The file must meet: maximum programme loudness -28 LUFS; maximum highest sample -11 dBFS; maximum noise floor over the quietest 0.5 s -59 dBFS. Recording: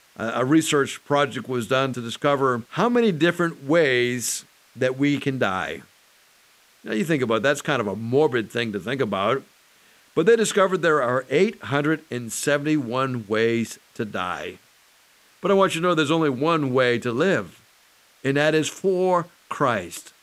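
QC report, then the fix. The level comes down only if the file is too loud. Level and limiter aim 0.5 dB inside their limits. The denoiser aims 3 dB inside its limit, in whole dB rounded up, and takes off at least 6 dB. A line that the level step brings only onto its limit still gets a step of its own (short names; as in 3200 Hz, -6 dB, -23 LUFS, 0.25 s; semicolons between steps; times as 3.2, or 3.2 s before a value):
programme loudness -22.5 LUFS: fail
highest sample -5.5 dBFS: fail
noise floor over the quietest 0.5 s -57 dBFS: fail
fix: gain -6 dB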